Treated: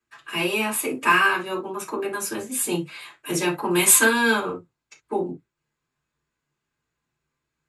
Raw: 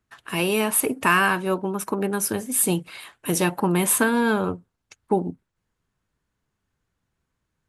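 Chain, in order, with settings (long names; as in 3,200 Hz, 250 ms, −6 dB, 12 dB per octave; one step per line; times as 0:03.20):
0:03.72–0:04.40: high-shelf EQ 2,100 Hz +11 dB
convolution reverb, pre-delay 3 ms, DRR −6.5 dB
level −8.5 dB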